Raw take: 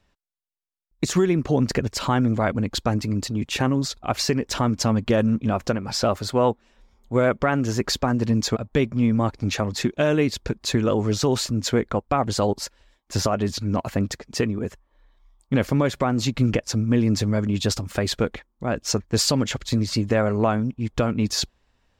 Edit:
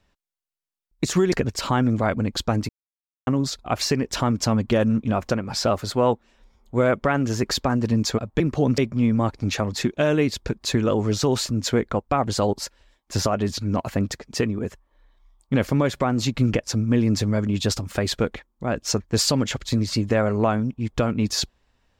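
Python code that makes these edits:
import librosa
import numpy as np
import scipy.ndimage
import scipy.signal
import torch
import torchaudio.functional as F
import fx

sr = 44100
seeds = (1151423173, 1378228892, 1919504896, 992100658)

y = fx.edit(x, sr, fx.move(start_s=1.32, length_s=0.38, to_s=8.78),
    fx.silence(start_s=3.07, length_s=0.58), tone=tone)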